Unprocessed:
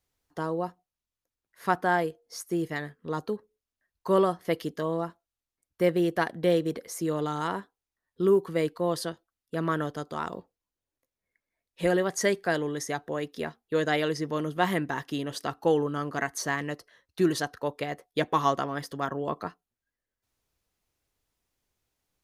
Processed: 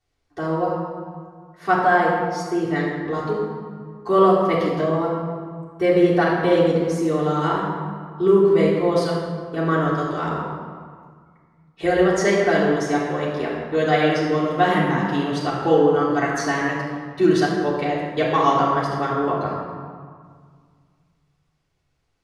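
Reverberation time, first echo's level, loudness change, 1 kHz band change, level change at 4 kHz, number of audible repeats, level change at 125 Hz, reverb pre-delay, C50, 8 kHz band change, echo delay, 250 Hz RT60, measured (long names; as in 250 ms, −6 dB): 1.9 s, no echo audible, +8.5 dB, +9.5 dB, +5.5 dB, no echo audible, +9.5 dB, 3 ms, 0.5 dB, +0.5 dB, no echo audible, 2.2 s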